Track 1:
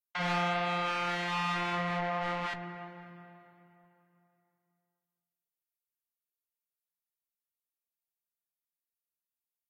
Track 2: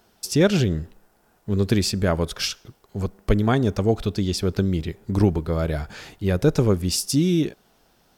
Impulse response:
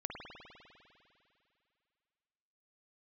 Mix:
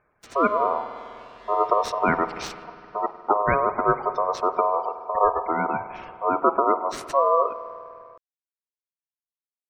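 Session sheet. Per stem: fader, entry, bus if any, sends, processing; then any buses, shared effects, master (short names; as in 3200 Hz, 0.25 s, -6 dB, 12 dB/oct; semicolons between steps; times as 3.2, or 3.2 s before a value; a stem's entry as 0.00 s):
-15.5 dB, 0.10 s, no send, dry
-3.5 dB, 0.00 s, send -9 dB, median filter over 15 samples; spectral gate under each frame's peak -20 dB strong; AGC gain up to 10 dB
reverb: on, RT60 2.6 s, pre-delay 50 ms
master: low shelf 220 Hz -5 dB; ring modulator 830 Hz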